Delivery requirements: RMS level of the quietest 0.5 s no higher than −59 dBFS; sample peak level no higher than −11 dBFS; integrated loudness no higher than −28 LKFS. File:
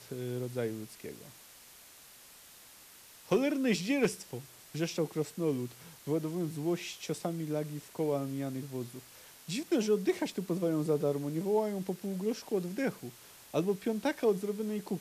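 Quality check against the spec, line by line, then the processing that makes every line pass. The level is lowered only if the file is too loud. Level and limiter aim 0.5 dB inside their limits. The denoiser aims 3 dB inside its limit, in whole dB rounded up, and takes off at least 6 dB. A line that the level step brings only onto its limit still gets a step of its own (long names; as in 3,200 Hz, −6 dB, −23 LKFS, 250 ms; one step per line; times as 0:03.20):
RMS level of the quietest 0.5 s −55 dBFS: out of spec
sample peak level −18.5 dBFS: in spec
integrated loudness −33.5 LKFS: in spec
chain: broadband denoise 7 dB, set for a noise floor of −55 dBFS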